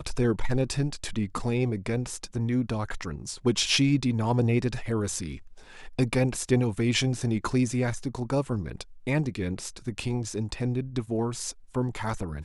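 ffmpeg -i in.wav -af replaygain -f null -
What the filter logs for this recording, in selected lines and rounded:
track_gain = +8.1 dB
track_peak = 0.203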